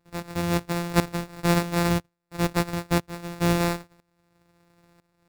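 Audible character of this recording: a buzz of ramps at a fixed pitch in blocks of 256 samples; tremolo saw up 1 Hz, depth 85%; aliases and images of a low sample rate 3.1 kHz, jitter 0%

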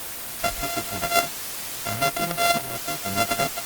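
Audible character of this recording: a buzz of ramps at a fixed pitch in blocks of 64 samples; tremolo saw down 0.66 Hz, depth 55%; a quantiser's noise floor 6-bit, dither triangular; Opus

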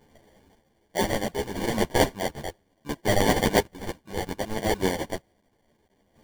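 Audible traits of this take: a quantiser's noise floor 10-bit, dither triangular; chopped level 0.65 Hz, depth 60%, duty 35%; aliases and images of a low sample rate 1.3 kHz, jitter 0%; a shimmering, thickened sound

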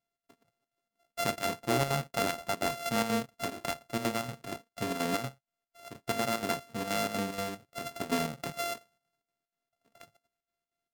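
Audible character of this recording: a buzz of ramps at a fixed pitch in blocks of 64 samples; chopped level 4.2 Hz, depth 60%, duty 70%; MP3

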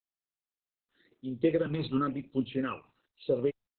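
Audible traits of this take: phasing stages 12, 0.96 Hz, lowest notch 520–1800 Hz; a quantiser's noise floor 12-bit, dither none; random-step tremolo 3.5 Hz; Opus

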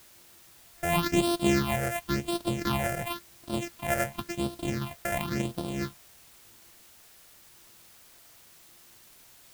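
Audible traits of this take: a buzz of ramps at a fixed pitch in blocks of 128 samples; phasing stages 6, 0.94 Hz, lowest notch 270–2000 Hz; a quantiser's noise floor 10-bit, dither triangular

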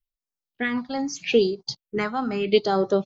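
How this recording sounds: phasing stages 4, 0.8 Hz, lowest notch 410–2800 Hz; random flutter of the level

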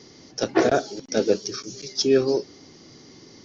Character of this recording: noise floor -50 dBFS; spectral tilt -4.0 dB/octave

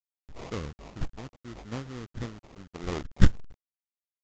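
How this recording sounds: a quantiser's noise floor 8-bit, dither none; phasing stages 8, 0.72 Hz, lowest notch 530–1300 Hz; aliases and images of a low sample rate 1.6 kHz, jitter 20%; µ-law

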